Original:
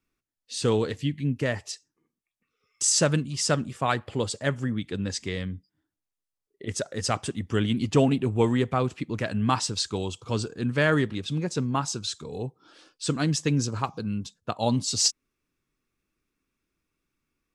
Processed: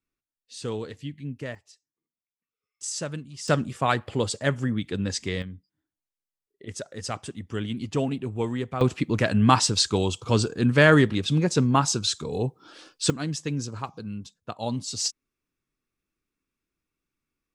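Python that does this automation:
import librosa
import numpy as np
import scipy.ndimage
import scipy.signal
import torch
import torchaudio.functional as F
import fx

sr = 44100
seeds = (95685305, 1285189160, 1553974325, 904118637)

y = fx.gain(x, sr, db=fx.steps((0.0, -8.0), (1.55, -17.5), (2.83, -10.0), (3.48, 2.0), (5.42, -5.5), (8.81, 6.0), (13.1, -5.0)))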